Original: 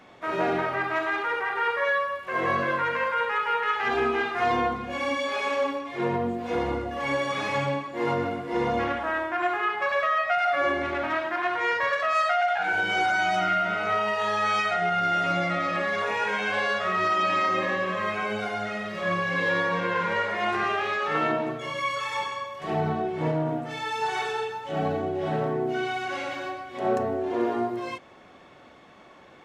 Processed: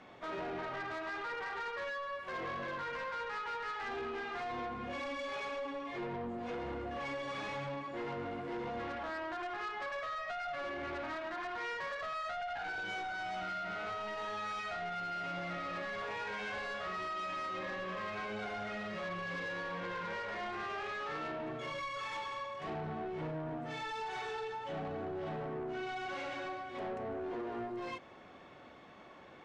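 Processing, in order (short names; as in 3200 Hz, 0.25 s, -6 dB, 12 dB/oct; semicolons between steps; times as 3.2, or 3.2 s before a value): compressor 6:1, threshold -29 dBFS, peak gain reduction 9 dB; soft clip -32 dBFS, distortion -12 dB; air absorption 63 m; gain -3.5 dB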